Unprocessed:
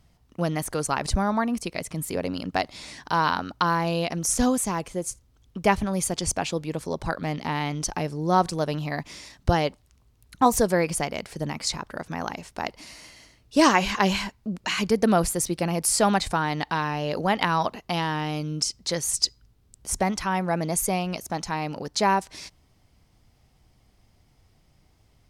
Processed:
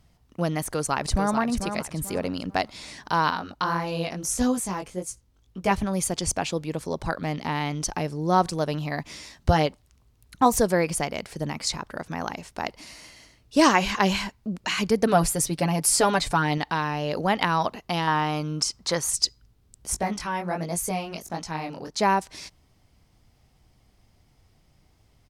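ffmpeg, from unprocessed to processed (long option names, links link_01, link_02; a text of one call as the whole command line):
ffmpeg -i in.wav -filter_complex "[0:a]asplit=2[link_01][link_02];[link_02]afade=type=in:start_time=0.67:duration=0.01,afade=type=out:start_time=1.37:duration=0.01,aecho=0:1:440|880|1320|1760:0.421697|0.126509|0.0379527|0.0113858[link_03];[link_01][link_03]amix=inputs=2:normalize=0,asettb=1/sr,asplit=3[link_04][link_05][link_06];[link_04]atrim=end=3.304[link_07];[link_05]atrim=start=3.3:end=5.71,asetpts=PTS-STARTPTS,afade=type=in:duration=0.004:curve=qsin,afade=type=out:start_time=2.406:duration=0.004:curve=qsin,flanger=delay=15.5:depth=6.2:speed=1.7[link_08];[link_06]atrim=start=5.706[link_09];[link_07][link_08]acrossfade=duration=0.004:curve1=hsin:curve2=qsin[link_10];[link_10][link_09]acrossfade=duration=0.004:curve1=qsin:curve2=hsin,asettb=1/sr,asplit=3[link_11][link_12][link_13];[link_11]atrim=end=9.064[link_14];[link_12]atrim=start=9.06:end=9.66,asetpts=PTS-STARTPTS,afade=type=in:duration=0.004:curve=qsin,afade=type=out:start_time=0.596:duration=0.004:curve=qsin,asplit=2[link_15][link_16];[link_16]adelay=13,volume=-6dB[link_17];[link_15][link_17]amix=inputs=2:normalize=0,atrim=end_sample=26460[link_18];[link_13]atrim=start=9.656[link_19];[link_14][link_18]acrossfade=duration=0.004:curve1=hsin:curve2=qsin[link_20];[link_20][link_19]acrossfade=duration=0.004:curve1=qsin:curve2=hsin,asettb=1/sr,asplit=3[link_21][link_22][link_23];[link_21]atrim=end=15.064[link_24];[link_22]atrim=start=15.06:end=16.58,asetpts=PTS-STARTPTS,afade=type=in:duration=0.004:curve=qsin,afade=type=out:start_time=1.516:duration=0.004:curve=qsin,aecho=1:1:7:0.65,atrim=end_sample=67032[link_25];[link_23]atrim=start=16.576[link_26];[link_24][link_25]acrossfade=duration=0.004:curve1=hsin:curve2=qsin[link_27];[link_27][link_26]acrossfade=duration=0.004:curve1=qsin:curve2=hsin,asettb=1/sr,asplit=3[link_28][link_29][link_30];[link_28]atrim=end=18.074[link_31];[link_29]atrim=start=18.07:end=19.1,asetpts=PTS-STARTPTS,afade=type=in:duration=0.004:curve=qsin,afade=type=out:start_time=1.026:duration=0.004:curve=qsin,equalizer=frequency=1100:width_type=o:width=1.3:gain=9[link_32];[link_30]atrim=start=19.096[link_33];[link_31][link_32]acrossfade=duration=0.004:curve1=hsin:curve2=qsin[link_34];[link_34][link_33]acrossfade=duration=0.004:curve1=qsin:curve2=hsin,asplit=3[link_35][link_36][link_37];[link_35]afade=type=out:start_time=19.94:duration=0.02[link_38];[link_36]flanger=delay=17:depth=7.9:speed=1.4,afade=type=in:start_time=19.94:duration=0.02,afade=type=out:start_time=21.98:duration=0.02[link_39];[link_37]afade=type=in:start_time=21.98:duration=0.02[link_40];[link_38][link_39][link_40]amix=inputs=3:normalize=0" out.wav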